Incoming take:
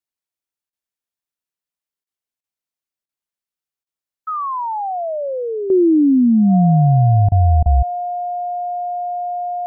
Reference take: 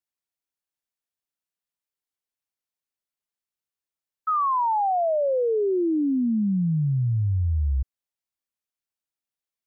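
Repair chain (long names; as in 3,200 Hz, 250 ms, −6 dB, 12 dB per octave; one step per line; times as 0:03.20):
notch filter 710 Hz, Q 30
repair the gap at 0:00.70/0:02.04/0:02.41/0:03.06/0:03.84/0:07.29/0:07.63, 27 ms
level correction −10.5 dB, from 0:05.70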